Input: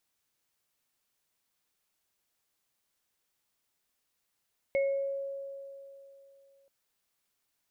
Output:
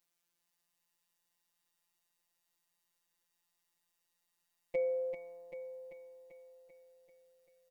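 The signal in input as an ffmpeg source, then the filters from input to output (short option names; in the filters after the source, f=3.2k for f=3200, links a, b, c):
-f lavfi -i "aevalsrc='0.0631*pow(10,-3*t/2.97)*sin(2*PI*551*t)+0.0224*pow(10,-3*t/0.51)*sin(2*PI*2180*t)':d=1.93:s=44100"
-af "afftfilt=real='hypot(re,im)*cos(PI*b)':imag='0':win_size=1024:overlap=0.75,aecho=1:1:390|780|1170|1560|1950|2340|2730|3120:0.447|0.268|0.161|0.0965|0.0579|0.0347|0.0208|0.0125"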